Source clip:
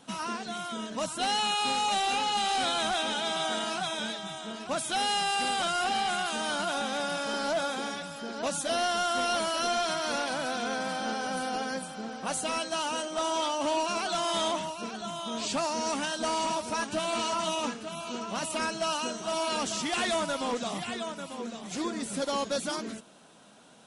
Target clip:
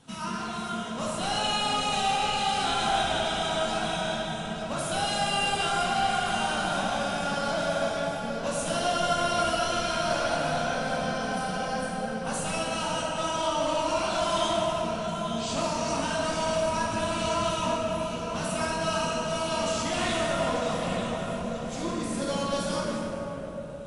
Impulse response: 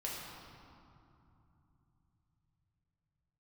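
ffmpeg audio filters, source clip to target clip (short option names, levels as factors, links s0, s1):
-filter_complex "[0:a]lowshelf=f=190:t=q:w=1.5:g=9[s0];[1:a]atrim=start_sample=2205,asetrate=23373,aresample=44100[s1];[s0][s1]afir=irnorm=-1:irlink=0,volume=0.668"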